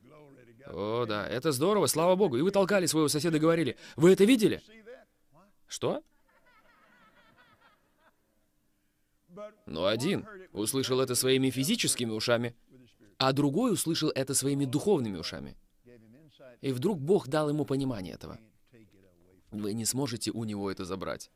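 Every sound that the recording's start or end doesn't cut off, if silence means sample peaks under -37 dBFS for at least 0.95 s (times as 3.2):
5.72–5.99
9.39–15.49
16.63–18.36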